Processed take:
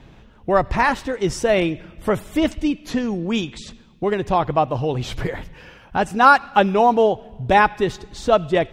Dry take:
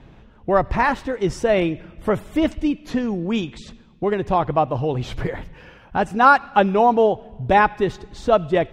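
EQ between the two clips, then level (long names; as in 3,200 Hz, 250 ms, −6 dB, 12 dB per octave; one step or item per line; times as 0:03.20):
high-shelf EQ 3,300 Hz +8 dB
0.0 dB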